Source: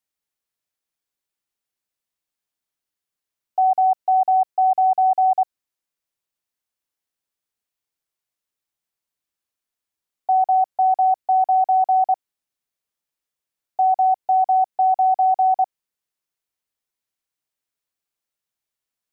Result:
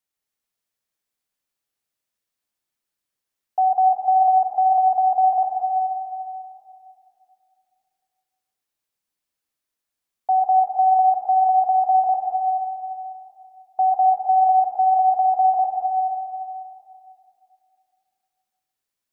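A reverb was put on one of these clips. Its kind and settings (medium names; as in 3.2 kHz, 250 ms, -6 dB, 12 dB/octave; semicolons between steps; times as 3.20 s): plate-style reverb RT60 2.6 s, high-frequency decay 0.85×, pre-delay 85 ms, DRR 0 dB; trim -1 dB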